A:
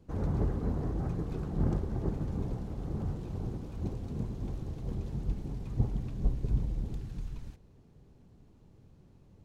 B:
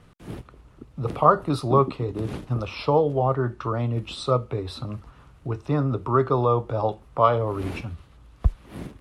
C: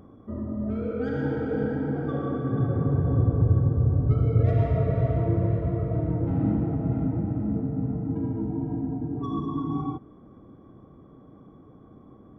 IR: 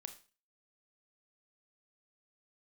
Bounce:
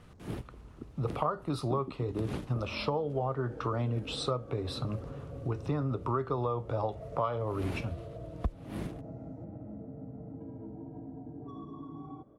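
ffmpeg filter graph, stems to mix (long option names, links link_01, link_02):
-filter_complex "[0:a]equalizer=frequency=6000:width=0.73:gain=11,acompressor=threshold=-35dB:ratio=6,asoftclip=type=tanh:threshold=-36dB,volume=-18dB,asplit=2[link_01][link_02];[link_02]volume=-6dB[link_03];[1:a]volume=-2dB[link_04];[2:a]equalizer=frequency=580:width=2.4:gain=13,acompressor=threshold=-29dB:ratio=6,adelay=2250,volume=-11.5dB[link_05];[3:a]atrim=start_sample=2205[link_06];[link_03][link_06]afir=irnorm=-1:irlink=0[link_07];[link_01][link_04][link_05][link_07]amix=inputs=4:normalize=0,acompressor=threshold=-28dB:ratio=6"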